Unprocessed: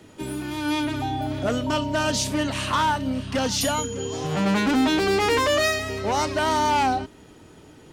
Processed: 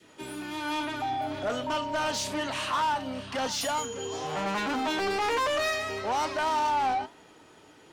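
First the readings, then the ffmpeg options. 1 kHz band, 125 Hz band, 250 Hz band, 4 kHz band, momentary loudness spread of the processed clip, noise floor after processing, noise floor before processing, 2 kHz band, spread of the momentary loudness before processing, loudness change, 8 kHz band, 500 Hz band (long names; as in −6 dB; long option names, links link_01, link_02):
−3.5 dB, −14.5 dB, −11.0 dB, −6.0 dB, 8 LU, −55 dBFS, −49 dBFS, −5.0 dB, 8 LU, −6.0 dB, −7.0 dB, −6.5 dB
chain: -filter_complex "[0:a]adynamicequalizer=threshold=0.0178:dfrequency=830:dqfactor=1.1:tfrequency=830:tqfactor=1.1:attack=5:release=100:ratio=0.375:range=2.5:mode=boostabove:tftype=bell,flanger=delay=5.8:depth=4.5:regen=79:speed=1.1:shape=sinusoidal,asplit=2[link_01][link_02];[link_02]highpass=frequency=720:poles=1,volume=16dB,asoftclip=type=tanh:threshold=-13.5dB[link_03];[link_01][link_03]amix=inputs=2:normalize=0,lowpass=frequency=6200:poles=1,volume=-6dB,volume=-7.5dB"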